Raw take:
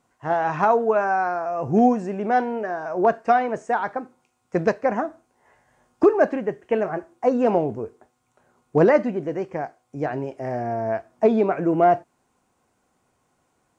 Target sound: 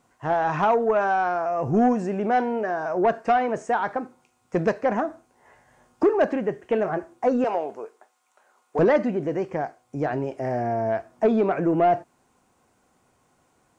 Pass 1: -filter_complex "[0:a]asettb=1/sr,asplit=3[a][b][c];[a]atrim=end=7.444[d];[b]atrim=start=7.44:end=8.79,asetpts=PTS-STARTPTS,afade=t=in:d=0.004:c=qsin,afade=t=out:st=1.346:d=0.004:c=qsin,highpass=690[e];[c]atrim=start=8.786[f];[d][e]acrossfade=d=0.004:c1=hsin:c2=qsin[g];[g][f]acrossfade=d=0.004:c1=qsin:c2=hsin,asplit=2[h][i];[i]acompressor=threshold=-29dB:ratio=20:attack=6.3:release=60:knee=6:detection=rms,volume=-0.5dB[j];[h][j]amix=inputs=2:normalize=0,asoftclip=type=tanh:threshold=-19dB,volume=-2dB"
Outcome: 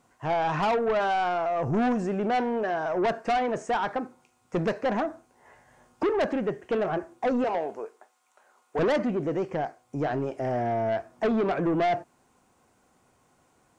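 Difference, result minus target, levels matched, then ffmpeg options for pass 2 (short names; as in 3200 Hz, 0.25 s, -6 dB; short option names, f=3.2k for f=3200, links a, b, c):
soft clip: distortion +10 dB
-filter_complex "[0:a]asettb=1/sr,asplit=3[a][b][c];[a]atrim=end=7.444[d];[b]atrim=start=7.44:end=8.79,asetpts=PTS-STARTPTS,afade=t=in:d=0.004:c=qsin,afade=t=out:st=1.346:d=0.004:c=qsin,highpass=690[e];[c]atrim=start=8.786[f];[d][e]acrossfade=d=0.004:c1=hsin:c2=qsin[g];[g][f]acrossfade=d=0.004:c1=qsin:c2=hsin,asplit=2[h][i];[i]acompressor=threshold=-29dB:ratio=20:attack=6.3:release=60:knee=6:detection=rms,volume=-0.5dB[j];[h][j]amix=inputs=2:normalize=0,asoftclip=type=tanh:threshold=-9dB,volume=-2dB"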